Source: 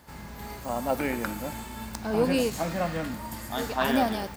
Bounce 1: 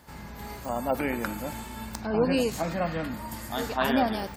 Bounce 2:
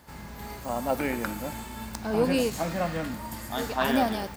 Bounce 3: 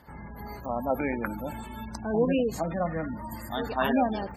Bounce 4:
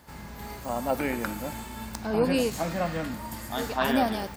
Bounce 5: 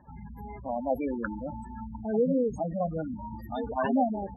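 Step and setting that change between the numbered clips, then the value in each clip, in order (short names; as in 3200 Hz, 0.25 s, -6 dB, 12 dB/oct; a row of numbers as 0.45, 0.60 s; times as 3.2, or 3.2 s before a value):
spectral gate, under each frame's peak: -35, -60, -20, -45, -10 dB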